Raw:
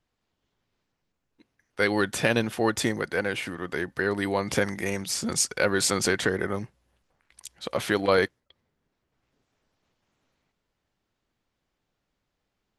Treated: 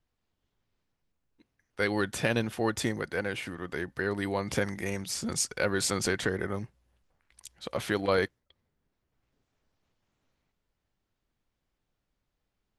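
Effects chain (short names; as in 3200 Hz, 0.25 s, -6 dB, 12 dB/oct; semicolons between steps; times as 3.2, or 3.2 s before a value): low shelf 97 Hz +8.5 dB; gain -5 dB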